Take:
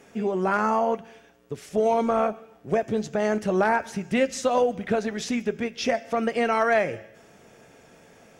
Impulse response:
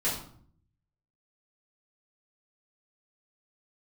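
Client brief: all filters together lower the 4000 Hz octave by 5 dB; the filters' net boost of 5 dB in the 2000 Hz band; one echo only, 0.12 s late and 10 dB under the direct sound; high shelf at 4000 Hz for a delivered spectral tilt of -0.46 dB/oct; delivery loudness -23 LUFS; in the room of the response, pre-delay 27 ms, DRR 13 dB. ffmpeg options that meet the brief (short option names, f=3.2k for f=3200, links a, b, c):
-filter_complex "[0:a]equalizer=f=2k:t=o:g=9,highshelf=f=4k:g=-5,equalizer=f=4k:t=o:g=-8,aecho=1:1:120:0.316,asplit=2[a][b];[1:a]atrim=start_sample=2205,adelay=27[c];[b][c]afir=irnorm=-1:irlink=0,volume=-21dB[d];[a][d]amix=inputs=2:normalize=0,volume=0.5dB"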